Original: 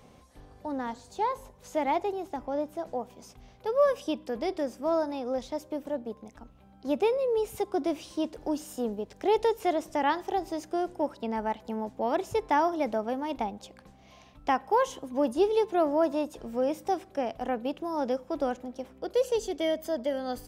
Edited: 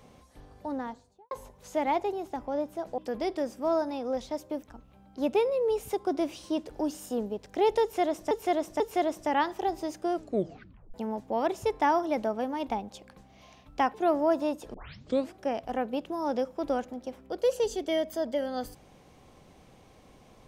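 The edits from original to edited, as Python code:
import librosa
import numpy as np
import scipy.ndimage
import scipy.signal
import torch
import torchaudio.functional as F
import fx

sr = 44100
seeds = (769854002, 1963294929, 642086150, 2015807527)

y = fx.studio_fade_out(x, sr, start_s=0.66, length_s=0.65)
y = fx.edit(y, sr, fx.cut(start_s=2.98, length_s=1.21),
    fx.cut(start_s=5.84, length_s=0.46),
    fx.repeat(start_s=9.49, length_s=0.49, count=3),
    fx.tape_stop(start_s=10.82, length_s=0.81),
    fx.cut(start_s=14.63, length_s=1.03),
    fx.tape_start(start_s=16.46, length_s=0.61), tone=tone)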